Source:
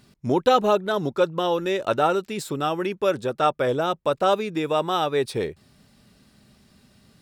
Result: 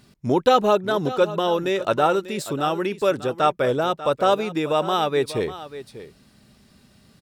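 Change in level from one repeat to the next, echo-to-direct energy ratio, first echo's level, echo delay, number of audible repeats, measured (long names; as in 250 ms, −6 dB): repeats not evenly spaced, −14.5 dB, −14.5 dB, 592 ms, 1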